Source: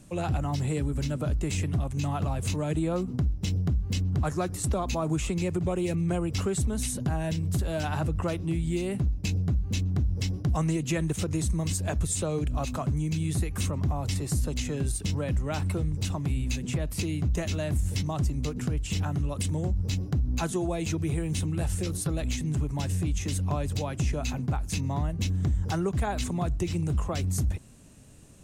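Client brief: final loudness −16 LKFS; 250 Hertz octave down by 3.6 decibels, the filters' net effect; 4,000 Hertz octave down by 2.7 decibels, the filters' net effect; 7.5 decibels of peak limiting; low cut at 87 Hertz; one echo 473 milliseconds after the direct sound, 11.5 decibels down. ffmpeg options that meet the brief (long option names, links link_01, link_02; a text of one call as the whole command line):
ffmpeg -i in.wav -af "highpass=87,equalizer=frequency=250:width_type=o:gain=-6,equalizer=frequency=4000:width_type=o:gain=-3.5,alimiter=limit=-24dB:level=0:latency=1,aecho=1:1:473:0.266,volume=17.5dB" out.wav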